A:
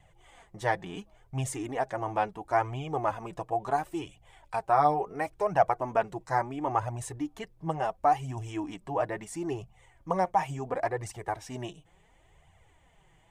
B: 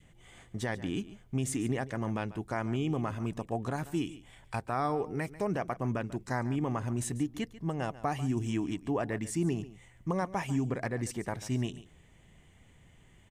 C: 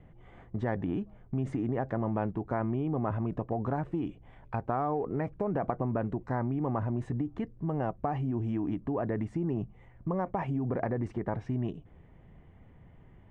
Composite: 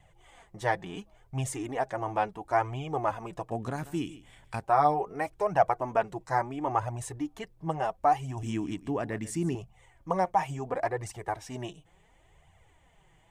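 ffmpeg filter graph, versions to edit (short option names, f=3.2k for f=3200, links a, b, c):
-filter_complex "[1:a]asplit=2[a][b];[0:a]asplit=3[c][d][e];[c]atrim=end=3.512[f];[a]atrim=start=3.508:end=4.642[g];[d]atrim=start=4.638:end=8.432[h];[b]atrim=start=8.428:end=9.552[i];[e]atrim=start=9.548[j];[f][g]acrossfade=d=0.004:c1=hsin:c2=hsin[k];[k][h]acrossfade=d=0.004:c1=hsin:c2=hsin[l];[l][i]acrossfade=d=0.004:c1=hsin:c2=hsin[m];[m][j]acrossfade=d=0.004:c1=hsin:c2=hsin"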